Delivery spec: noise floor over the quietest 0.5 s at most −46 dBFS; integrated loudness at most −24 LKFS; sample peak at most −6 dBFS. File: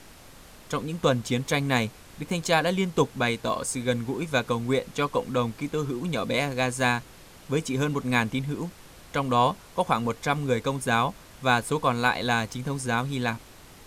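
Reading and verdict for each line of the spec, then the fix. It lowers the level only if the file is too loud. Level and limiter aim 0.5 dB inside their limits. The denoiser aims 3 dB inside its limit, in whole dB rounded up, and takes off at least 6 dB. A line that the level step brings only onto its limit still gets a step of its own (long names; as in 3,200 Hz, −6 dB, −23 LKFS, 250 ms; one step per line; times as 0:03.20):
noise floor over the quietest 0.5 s −48 dBFS: in spec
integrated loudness −26.5 LKFS: in spec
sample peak −7.5 dBFS: in spec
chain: no processing needed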